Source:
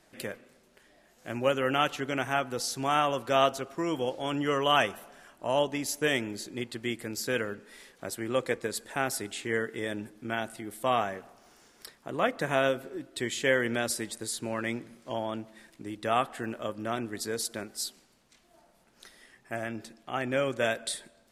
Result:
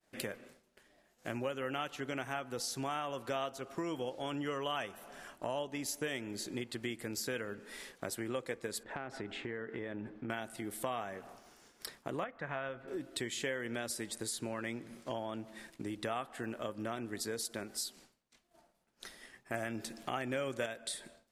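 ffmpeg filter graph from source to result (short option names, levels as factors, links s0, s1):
-filter_complex "[0:a]asettb=1/sr,asplit=3[s0][s1][s2];[s0]atrim=end=8.834[s3];[s1]atrim=start=8.83:end=10.3,asetpts=PTS-STARTPTS,afade=t=in:d=0.004:c=qsin,afade=t=out:st=1.466:d=0.004:c=qsin,lowpass=2100,acompressor=threshold=0.0112:ratio=3:attack=3.2:release=140:knee=1:detection=peak[s4];[s2]atrim=start=10.296[s5];[s3][s4]acrossfade=d=0.004:c1=hsin:c2=qsin[s6];[s6][s5]acrossfade=d=0.004:c1=qsin:c2=hsin,asettb=1/sr,asplit=3[s7][s8][s9];[s7]atrim=end=12.244[s10];[s8]atrim=start=12.24:end=12.88,asetpts=PTS-STARTPTS,afade=t=in:d=0.004:c=qsin,afade=t=out:st=0.636:d=0.004:c=qsin,lowpass=1800,equalizer=f=330:w=0.53:g=-11[s11];[s9]atrim=start=12.876[s12];[s10][s11]acrossfade=d=0.004:c1=hsin:c2=qsin[s13];[s13][s12]acrossfade=d=0.004:c1=qsin:c2=hsin,asettb=1/sr,asplit=3[s14][s15][s16];[s14]atrim=end=19.544[s17];[s15]atrim=start=19.54:end=20.66,asetpts=PTS-STARTPTS,afade=t=in:d=0.004:c=qsin,afade=t=out:st=1.116:d=0.004:c=qsin,highshelf=f=5800:g=5.5,acontrast=45[s18];[s16]atrim=start=20.656[s19];[s17][s18]acrossfade=d=0.004:c1=hsin:c2=qsin[s20];[s20][s19]acrossfade=d=0.004:c1=qsin:c2=hsin,agate=range=0.0224:threshold=0.00224:ratio=3:detection=peak,acompressor=threshold=0.01:ratio=4,volume=1.41"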